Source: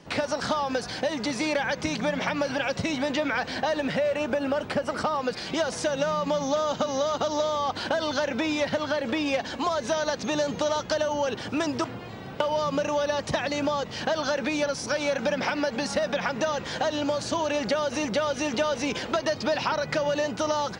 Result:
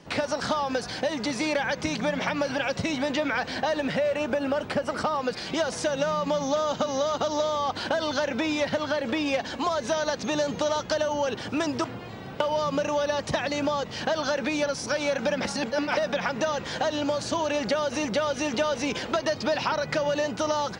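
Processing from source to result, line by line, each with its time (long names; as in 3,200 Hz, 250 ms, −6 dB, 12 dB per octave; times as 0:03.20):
0:15.45–0:15.97: reverse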